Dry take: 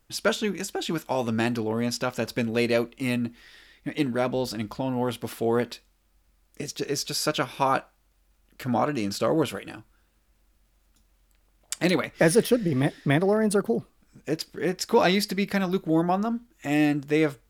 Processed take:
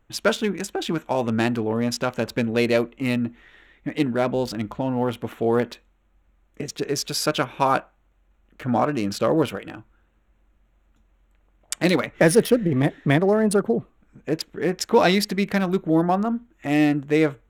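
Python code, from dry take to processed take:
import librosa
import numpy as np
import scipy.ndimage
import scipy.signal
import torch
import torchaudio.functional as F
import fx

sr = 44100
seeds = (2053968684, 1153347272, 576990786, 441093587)

y = fx.wiener(x, sr, points=9)
y = F.gain(torch.from_numpy(y), 3.5).numpy()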